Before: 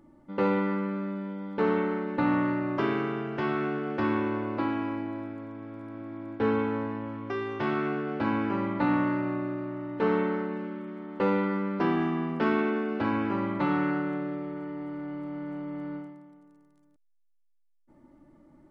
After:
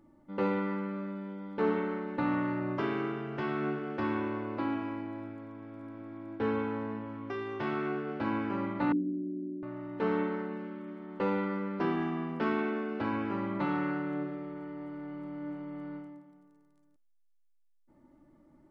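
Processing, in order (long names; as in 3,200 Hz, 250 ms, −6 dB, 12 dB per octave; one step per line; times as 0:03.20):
flanger 0.19 Hz, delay 9.3 ms, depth 7 ms, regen +87%
0:08.92–0:09.63: elliptic band-pass filter 180–420 Hz, stop band 50 dB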